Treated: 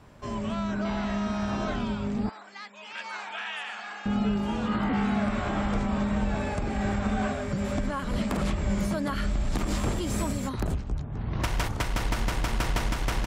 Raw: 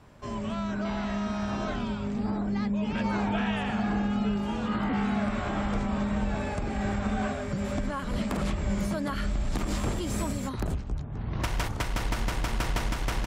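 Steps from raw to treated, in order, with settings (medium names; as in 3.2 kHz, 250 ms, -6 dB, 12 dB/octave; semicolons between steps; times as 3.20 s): 2.29–4.06 s: high-pass 1.3 kHz 12 dB/octave; trim +1.5 dB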